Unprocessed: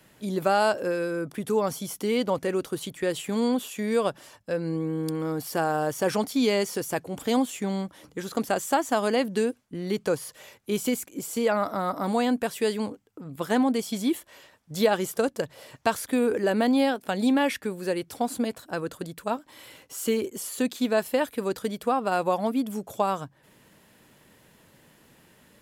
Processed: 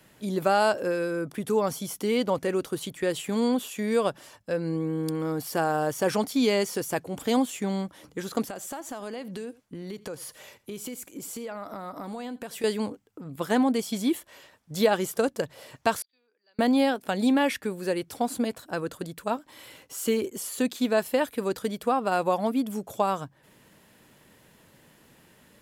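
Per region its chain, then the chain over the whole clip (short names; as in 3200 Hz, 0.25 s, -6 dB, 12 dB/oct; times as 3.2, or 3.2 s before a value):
8.47–12.64 compressor 5:1, threshold -34 dBFS + echo 83 ms -20.5 dB
16.02–16.59 band-pass 4700 Hz, Q 19 + air absorption 380 m + three-band expander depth 100%
whole clip: dry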